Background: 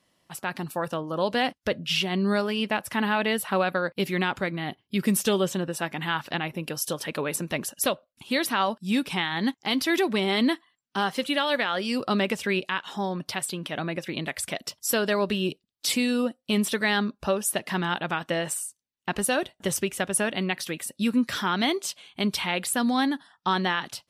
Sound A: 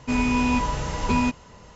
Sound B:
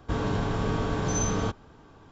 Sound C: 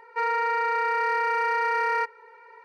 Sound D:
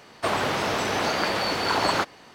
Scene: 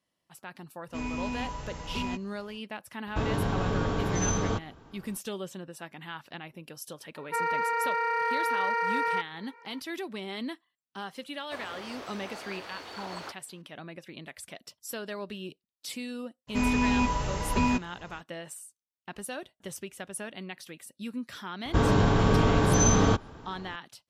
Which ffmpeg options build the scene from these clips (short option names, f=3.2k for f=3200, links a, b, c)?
-filter_complex "[1:a]asplit=2[a][b];[2:a]asplit=2[c][d];[0:a]volume=-13dB[e];[4:a]equalizer=f=160:w=1.5:g=-9.5[f];[d]acontrast=34[g];[a]atrim=end=1.75,asetpts=PTS-STARTPTS,volume=-12dB,afade=t=in:d=0.05,afade=t=out:st=1.7:d=0.05,adelay=860[h];[c]atrim=end=2.11,asetpts=PTS-STARTPTS,volume=-1dB,afade=t=in:d=0.004:c=hsin,afade=t=out:st=2.106:d=0.004:c=hsin,adelay=3070[i];[3:a]atrim=end=2.64,asetpts=PTS-STARTPTS,volume=-3.5dB,afade=t=in:d=0.004:c=hsin,afade=t=out:st=2.636:d=0.004:c=hsin,adelay=7160[j];[f]atrim=end=2.34,asetpts=PTS-STARTPTS,volume=-17.5dB,afade=t=in:d=0.004:c=hsin,afade=t=out:st=2.336:d=0.004:c=hsin,adelay=11280[k];[b]atrim=end=1.75,asetpts=PTS-STARTPTS,volume=-3.5dB,afade=t=in:d=0.02,afade=t=out:st=1.73:d=0.02,adelay=16470[l];[g]atrim=end=2.11,asetpts=PTS-STARTPTS,afade=t=in:d=0.004:c=hsin,afade=t=out:st=2.106:d=0.004:c=hsin,adelay=21650[m];[e][h][i][j][k][l][m]amix=inputs=7:normalize=0"